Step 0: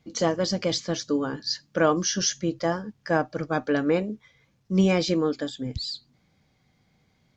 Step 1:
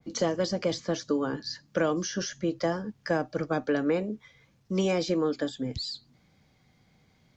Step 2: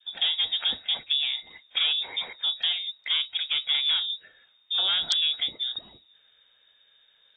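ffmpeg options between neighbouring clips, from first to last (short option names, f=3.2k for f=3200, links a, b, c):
-filter_complex "[0:a]acrossover=split=300|640|1900|4900[a][b][c][d][e];[a]acompressor=threshold=-36dB:ratio=4[f];[b]acompressor=threshold=-29dB:ratio=4[g];[c]acompressor=threshold=-38dB:ratio=4[h];[d]acompressor=threshold=-42dB:ratio=4[i];[e]acompressor=threshold=-39dB:ratio=4[j];[f][g][h][i][j]amix=inputs=5:normalize=0,adynamicequalizer=threshold=0.00501:dfrequency=2100:dqfactor=0.7:tfrequency=2100:tqfactor=0.7:attack=5:release=100:ratio=0.375:range=2.5:mode=cutabove:tftype=highshelf,volume=2dB"
-af "aeval=exprs='(tanh(10*val(0)+0.4)-tanh(0.4))/10':c=same,lowpass=f=3.2k:t=q:w=0.5098,lowpass=f=3.2k:t=q:w=0.6013,lowpass=f=3.2k:t=q:w=0.9,lowpass=f=3.2k:t=q:w=2.563,afreqshift=-3800,volume=3.5dB" -ar 24000 -c:a aac -b:a 24k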